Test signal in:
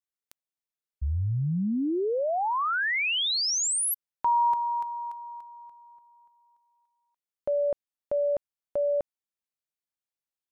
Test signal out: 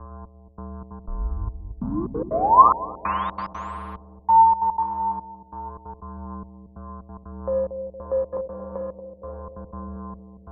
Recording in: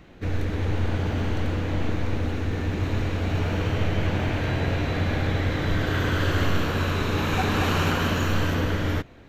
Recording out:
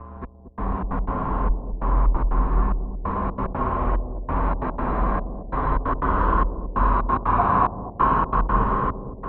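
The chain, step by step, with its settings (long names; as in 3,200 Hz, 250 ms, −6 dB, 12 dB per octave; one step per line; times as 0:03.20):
hum with harmonics 120 Hz, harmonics 14, −38 dBFS −9 dB per octave
in parallel at −9 dB: soft clipping −28 dBFS
on the sum: flanger 0.29 Hz, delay 6.5 ms, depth 5.4 ms, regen +35%
low-pass with resonance 1,100 Hz, resonance Q 9.9
spring reverb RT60 3.5 s, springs 54 ms, chirp 25 ms, DRR 3 dB
gate pattern "xxx....xxx.x.xx" 182 BPM −60 dB
frequency shifter −45 Hz
on a send: bucket-brigade delay 231 ms, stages 1,024, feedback 54%, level −8.5 dB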